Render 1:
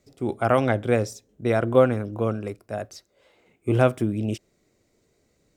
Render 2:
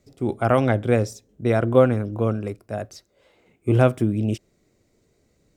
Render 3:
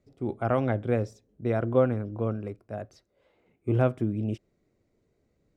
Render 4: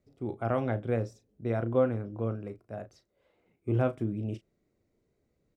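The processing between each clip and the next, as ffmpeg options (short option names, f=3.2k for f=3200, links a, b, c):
-af "lowshelf=f=290:g=5"
-af "lowpass=f=2k:p=1,volume=-6.5dB"
-filter_complex "[0:a]asplit=2[a][b];[b]adelay=35,volume=-11dB[c];[a][c]amix=inputs=2:normalize=0,volume=-4dB"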